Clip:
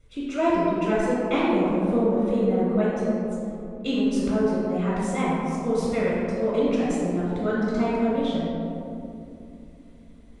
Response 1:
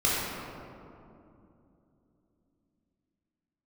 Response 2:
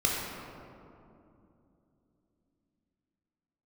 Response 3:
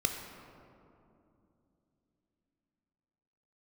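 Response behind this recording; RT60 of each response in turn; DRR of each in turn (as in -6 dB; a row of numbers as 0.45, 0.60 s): 1; 2.8, 2.8, 2.8 s; -8.0, -3.5, 3.5 dB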